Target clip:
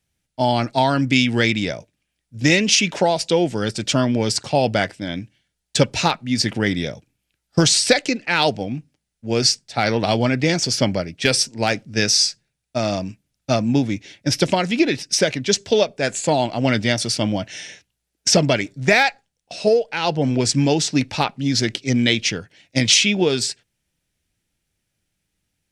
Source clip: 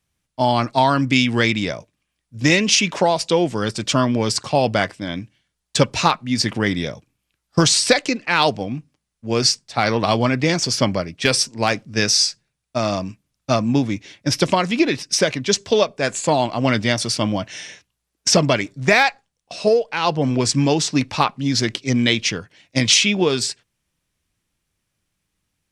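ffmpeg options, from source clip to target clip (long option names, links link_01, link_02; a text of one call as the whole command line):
ffmpeg -i in.wav -af "equalizer=frequency=1100:width_type=o:width=0.29:gain=-11.5" out.wav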